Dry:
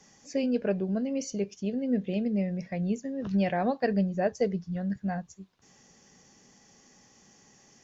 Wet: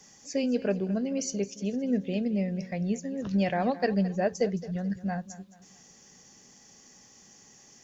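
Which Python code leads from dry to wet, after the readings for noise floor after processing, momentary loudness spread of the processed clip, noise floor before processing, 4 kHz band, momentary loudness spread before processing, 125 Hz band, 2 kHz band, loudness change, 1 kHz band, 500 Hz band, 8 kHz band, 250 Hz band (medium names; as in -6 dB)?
-56 dBFS, 6 LU, -60 dBFS, +3.5 dB, 6 LU, 0.0 dB, +1.0 dB, +0.5 dB, +0.5 dB, 0.0 dB, no reading, 0.0 dB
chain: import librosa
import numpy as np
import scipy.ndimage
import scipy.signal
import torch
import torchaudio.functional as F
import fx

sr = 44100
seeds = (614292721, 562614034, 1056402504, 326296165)

p1 = fx.high_shelf(x, sr, hz=5300.0, db=9.5)
y = p1 + fx.echo_feedback(p1, sr, ms=217, feedback_pct=36, wet_db=-16.5, dry=0)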